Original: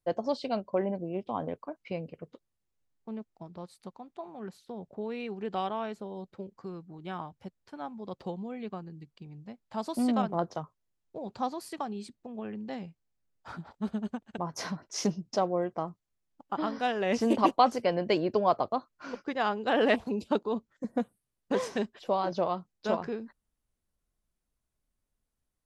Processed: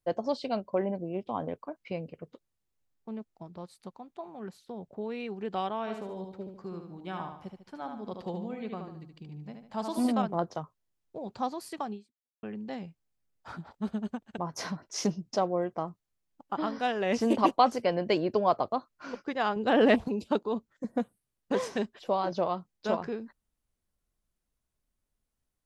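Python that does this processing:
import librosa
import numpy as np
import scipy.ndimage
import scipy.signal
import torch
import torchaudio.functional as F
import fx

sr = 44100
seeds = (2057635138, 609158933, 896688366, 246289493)

y = fx.echo_feedback(x, sr, ms=74, feedback_pct=40, wet_db=-5.5, at=(5.86, 10.11), fade=0.02)
y = fx.low_shelf(y, sr, hz=320.0, db=9.0, at=(19.56, 20.08))
y = fx.edit(y, sr, fx.fade_out_span(start_s=11.94, length_s=0.49, curve='exp'), tone=tone)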